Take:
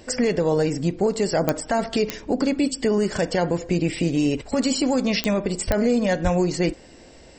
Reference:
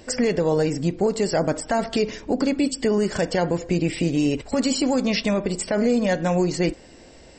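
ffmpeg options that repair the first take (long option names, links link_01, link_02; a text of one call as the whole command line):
ffmpeg -i in.wav -filter_complex "[0:a]adeclick=threshold=4,asplit=3[link_01][link_02][link_03];[link_01]afade=type=out:start_time=5.66:duration=0.02[link_04];[link_02]highpass=frequency=140:width=0.5412,highpass=frequency=140:width=1.3066,afade=type=in:start_time=5.66:duration=0.02,afade=type=out:start_time=5.78:duration=0.02[link_05];[link_03]afade=type=in:start_time=5.78:duration=0.02[link_06];[link_04][link_05][link_06]amix=inputs=3:normalize=0,asplit=3[link_07][link_08][link_09];[link_07]afade=type=out:start_time=6.23:duration=0.02[link_10];[link_08]highpass=frequency=140:width=0.5412,highpass=frequency=140:width=1.3066,afade=type=in:start_time=6.23:duration=0.02,afade=type=out:start_time=6.35:duration=0.02[link_11];[link_09]afade=type=in:start_time=6.35:duration=0.02[link_12];[link_10][link_11][link_12]amix=inputs=3:normalize=0" out.wav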